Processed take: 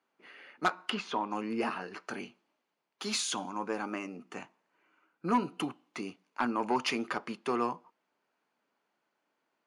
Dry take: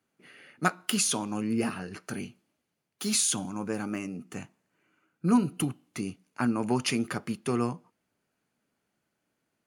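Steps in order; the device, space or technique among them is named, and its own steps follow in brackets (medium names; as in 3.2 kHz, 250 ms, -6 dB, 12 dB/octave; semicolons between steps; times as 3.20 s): intercom (band-pass 330–4800 Hz; peaking EQ 970 Hz +7 dB 0.58 oct; saturation -18 dBFS, distortion -15 dB); 0.72–1.31 s: low-pass that closes with the level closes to 2.2 kHz, closed at -29.5 dBFS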